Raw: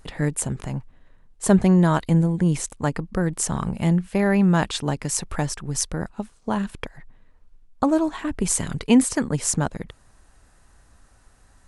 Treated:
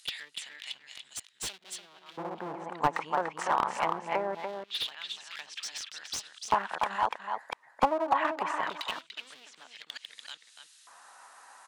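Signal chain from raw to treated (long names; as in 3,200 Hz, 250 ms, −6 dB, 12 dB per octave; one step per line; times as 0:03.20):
delay that plays each chunk backwards 399 ms, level −7.5 dB
treble cut that deepens with the level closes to 430 Hz, closed at −15.5 dBFS
dynamic equaliser 2,800 Hz, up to +4 dB, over −47 dBFS, Q 1.3
in parallel at −1 dB: downward compressor 6 to 1, threshold −30 dBFS, peak gain reduction 17 dB
on the sum: asymmetric clip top −22 dBFS, bottom −7.5 dBFS
auto-filter high-pass square 0.23 Hz 900–3,500 Hz
slap from a distant wall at 50 metres, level −6 dB
slew-rate limiting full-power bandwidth 150 Hz
level −1 dB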